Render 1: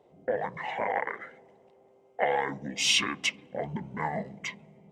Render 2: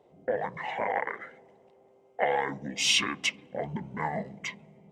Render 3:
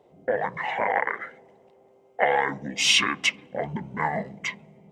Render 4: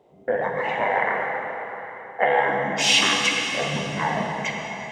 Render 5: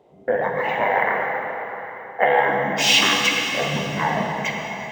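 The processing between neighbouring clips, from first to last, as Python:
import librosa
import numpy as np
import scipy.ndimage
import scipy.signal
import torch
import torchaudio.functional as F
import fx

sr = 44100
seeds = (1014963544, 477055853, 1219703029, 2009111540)

y1 = x
y2 = fx.dynamic_eq(y1, sr, hz=1500.0, q=0.9, threshold_db=-43.0, ratio=4.0, max_db=5)
y2 = F.gain(torch.from_numpy(y2), 3.0).numpy()
y3 = fx.rev_plate(y2, sr, seeds[0], rt60_s=4.1, hf_ratio=0.75, predelay_ms=0, drr_db=-1.0)
y4 = np.interp(np.arange(len(y3)), np.arange(len(y3))[::2], y3[::2])
y4 = F.gain(torch.from_numpy(y4), 2.5).numpy()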